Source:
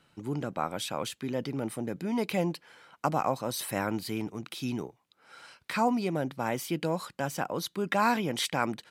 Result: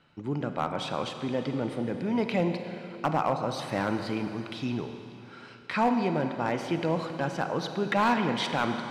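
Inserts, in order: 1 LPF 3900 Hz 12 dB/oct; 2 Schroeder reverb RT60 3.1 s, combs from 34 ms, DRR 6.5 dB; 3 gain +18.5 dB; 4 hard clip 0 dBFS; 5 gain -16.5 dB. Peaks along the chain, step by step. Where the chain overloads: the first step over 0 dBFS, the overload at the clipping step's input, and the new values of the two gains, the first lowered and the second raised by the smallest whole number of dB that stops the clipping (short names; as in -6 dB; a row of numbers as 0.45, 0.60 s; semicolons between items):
-12.0, -12.0, +6.5, 0.0, -16.5 dBFS; step 3, 6.5 dB; step 3 +11.5 dB, step 5 -9.5 dB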